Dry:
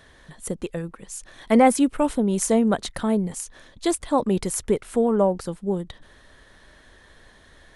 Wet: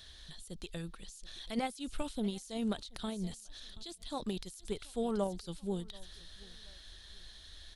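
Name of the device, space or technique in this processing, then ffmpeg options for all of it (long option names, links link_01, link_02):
de-esser from a sidechain: -filter_complex "[0:a]equalizer=frequency=125:width_type=o:width=1:gain=-10,equalizer=frequency=250:width_type=o:width=1:gain=-11,equalizer=frequency=500:width_type=o:width=1:gain=-12,equalizer=frequency=1000:width_type=o:width=1:gain=-11,equalizer=frequency=2000:width_type=o:width=1:gain=-10,equalizer=frequency=4000:width_type=o:width=1:gain=10,equalizer=frequency=8000:width_type=o:width=1:gain=-4,aecho=1:1:729|1458:0.0631|0.0177,asplit=2[link_01][link_02];[link_02]highpass=frequency=4600:width=0.5412,highpass=frequency=4600:width=1.3066,apad=whole_len=406437[link_03];[link_01][link_03]sidechaincompress=threshold=-54dB:ratio=6:attack=2.6:release=38,volume=2dB"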